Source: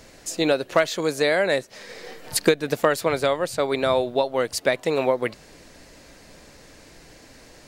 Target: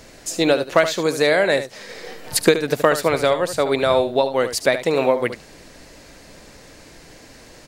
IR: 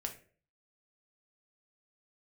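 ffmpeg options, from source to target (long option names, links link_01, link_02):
-filter_complex "[0:a]asplit=2[link_01][link_02];[link_02]aecho=0:1:74:0.282[link_03];[link_01][link_03]amix=inputs=2:normalize=0,volume=3.5dB"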